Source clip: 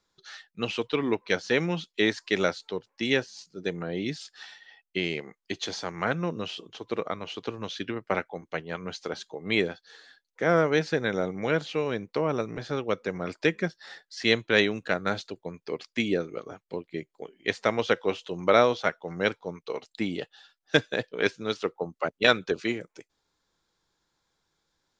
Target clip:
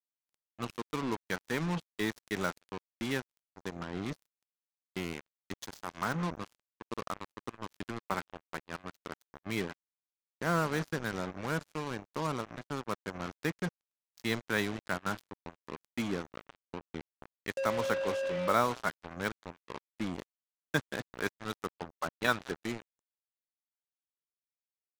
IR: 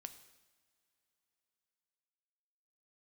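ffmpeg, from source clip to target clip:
-filter_complex "[0:a]firequalizer=gain_entry='entry(170,0);entry(500,-10);entry(1000,3);entry(1900,-6);entry(2800,-11);entry(8300,3)':delay=0.05:min_phase=1,asettb=1/sr,asplit=3[a][b][c];[a]atrim=end=17.574[d];[b]atrim=start=17.57:end=18.53,asetpts=PTS-STARTPTS,afade=t=in:d=0.004:c=qsin,afade=t=out:st=0.956:d=0.004:c=qsin,aeval=exprs='val(0)+0.0447*sin(2*PI*540*n/s)':c=same[e];[c]atrim=start=18.526[f];[d][e]acrossfade=d=0.004:c1=hsin:c2=qsin[g];[g][f]acrossfade=d=0.004:c1=qsin:c2=hsin,asplit=4[h][i][j][k];[i]adelay=171,afreqshift=49,volume=-20.5dB[l];[j]adelay=342,afreqshift=98,volume=-30.1dB[m];[k]adelay=513,afreqshift=147,volume=-39.8dB[n];[h][l][m][n]amix=inputs=4:normalize=0,asplit=2[o][p];[1:a]atrim=start_sample=2205[q];[p][q]afir=irnorm=-1:irlink=0,volume=-4.5dB[r];[o][r]amix=inputs=2:normalize=0,acrusher=bits=4:mix=0:aa=0.5,volume=-6dB"

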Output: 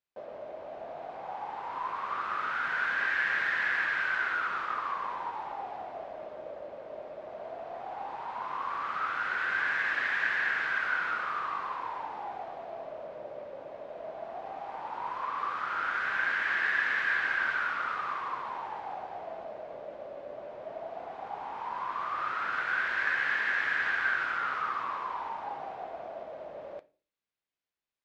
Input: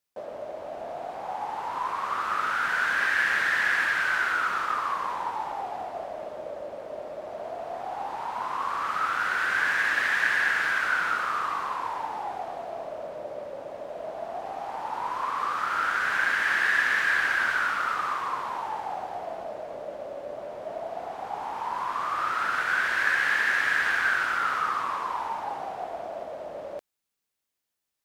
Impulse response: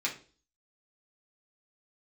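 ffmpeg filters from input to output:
-filter_complex "[0:a]lowpass=3.8k,asplit=2[a][b];[1:a]atrim=start_sample=2205[c];[b][c]afir=irnorm=-1:irlink=0,volume=-13.5dB[d];[a][d]amix=inputs=2:normalize=0,volume=-6.5dB"

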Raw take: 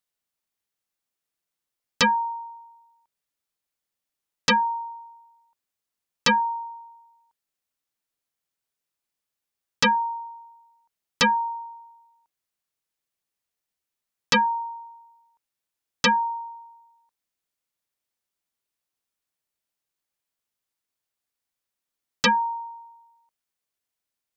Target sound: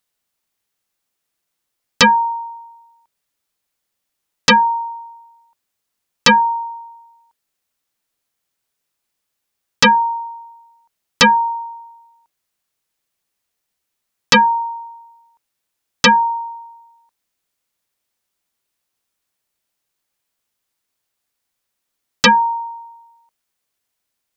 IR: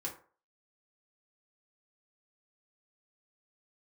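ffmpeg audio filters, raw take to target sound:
-af "bandreject=f=150.8:t=h:w=4,bandreject=f=301.6:t=h:w=4,bandreject=f=452.4:t=h:w=4,bandreject=f=603.2:t=h:w=4,volume=9dB"

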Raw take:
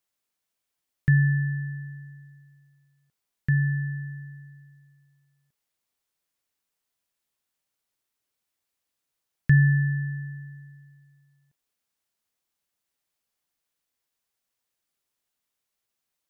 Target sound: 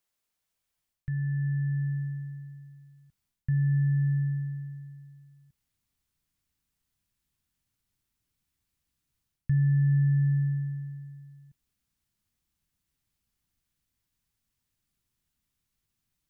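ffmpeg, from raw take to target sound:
-af "alimiter=limit=-21dB:level=0:latency=1,areverse,acompressor=threshold=-36dB:ratio=6,areverse,asubboost=boost=9.5:cutoff=170"

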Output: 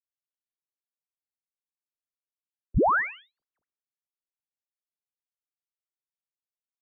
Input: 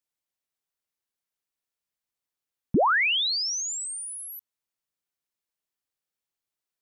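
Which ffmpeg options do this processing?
-filter_complex "[0:a]asettb=1/sr,asplit=3[a][b][c];[a]atrim=end=3.314[d];[b]atrim=start=3.31:end=3.81,asetpts=PTS-STARTPTS,afade=t=in:d=0.004:c=qsin,afade=t=out:st=0.496:d=0.004:c=qsin,aeval=exprs='0.0708*sin(PI/2*3.55*val(0)/0.0708)':c=same[e];[c]atrim=start=3.806[f];[d][e]acrossfade=d=0.004:c1=hsin:c2=qsin[g];[g][f]acrossfade=d=0.004:c1=qsin:c2=hsin,highpass=f=240:t=q:w=0.5412,highpass=f=240:t=q:w=1.307,lowpass=f=2k:t=q:w=0.5176,lowpass=f=2k:t=q:w=0.7071,lowpass=f=2k:t=q:w=1.932,afreqshift=-230,asplit=2[h][i];[i]aecho=0:1:109|218:0.0708|0.017[j];[h][j]amix=inputs=2:normalize=0,afftdn=nr=23:nf=-47"

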